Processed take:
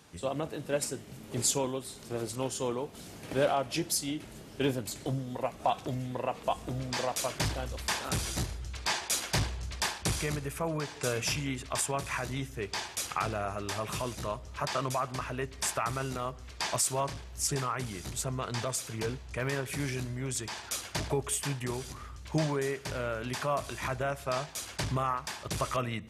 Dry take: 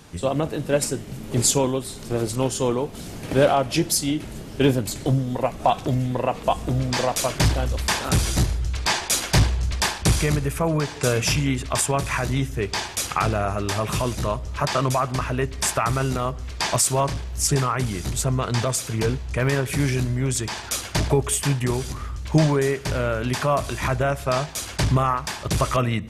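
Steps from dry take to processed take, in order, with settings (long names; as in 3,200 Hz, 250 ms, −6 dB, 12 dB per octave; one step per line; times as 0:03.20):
high-pass filter 44 Hz
low-shelf EQ 300 Hz −5.5 dB
level −8.5 dB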